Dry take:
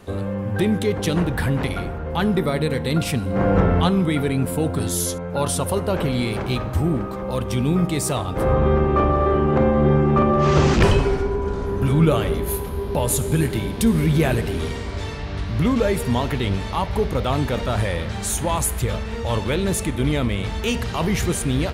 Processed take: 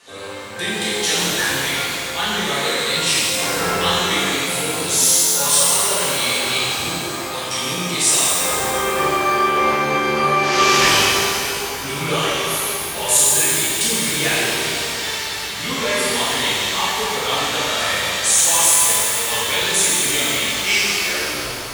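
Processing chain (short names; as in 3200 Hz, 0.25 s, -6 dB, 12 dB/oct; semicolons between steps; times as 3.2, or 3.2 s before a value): tape stop at the end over 1.20 s; weighting filter ITU-R 468; shimmer reverb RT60 2.6 s, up +12 st, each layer -8 dB, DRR -11 dB; gain -7 dB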